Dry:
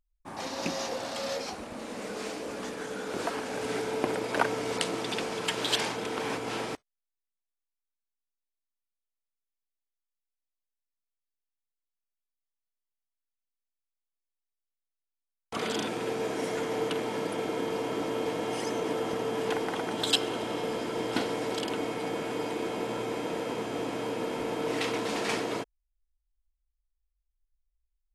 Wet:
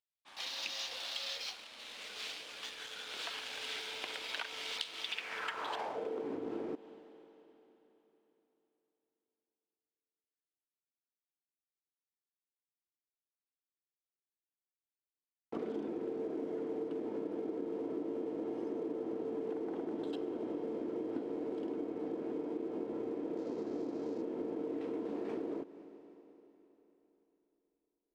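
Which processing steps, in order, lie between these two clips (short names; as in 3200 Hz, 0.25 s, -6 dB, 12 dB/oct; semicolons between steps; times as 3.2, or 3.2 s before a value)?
band-pass sweep 3400 Hz -> 330 Hz, 5.02–6.28; sample leveller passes 1; 23.37–24.22 band shelf 5400 Hz +9.5 dB 1.1 oct; Schroeder reverb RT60 3.7 s, combs from 32 ms, DRR 18.5 dB; compressor, threshold -39 dBFS, peak gain reduction 13.5 dB; gain +3 dB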